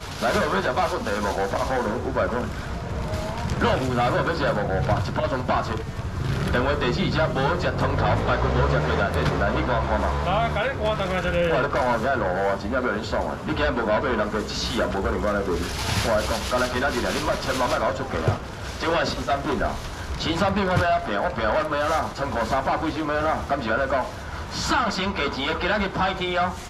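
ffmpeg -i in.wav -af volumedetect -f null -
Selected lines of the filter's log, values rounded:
mean_volume: -23.7 dB
max_volume: -7.3 dB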